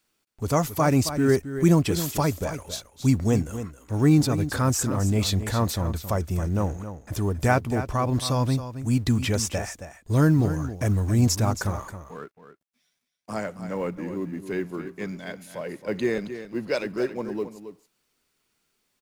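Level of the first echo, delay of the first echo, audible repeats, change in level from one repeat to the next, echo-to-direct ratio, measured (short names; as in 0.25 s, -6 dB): -11.0 dB, 0.271 s, 1, no steady repeat, -11.0 dB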